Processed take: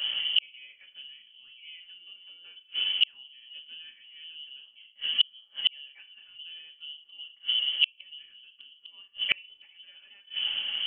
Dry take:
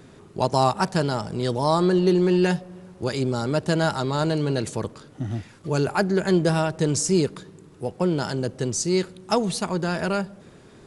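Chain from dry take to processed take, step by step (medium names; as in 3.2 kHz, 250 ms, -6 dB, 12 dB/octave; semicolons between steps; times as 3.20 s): peaking EQ 210 Hz +10 dB 2.5 oct; FDN reverb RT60 0.33 s, low-frequency decay 1.2×, high-frequency decay 0.9×, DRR -1 dB; frequency inversion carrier 3.2 kHz; inverted gate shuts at -13 dBFS, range -42 dB; trim +5 dB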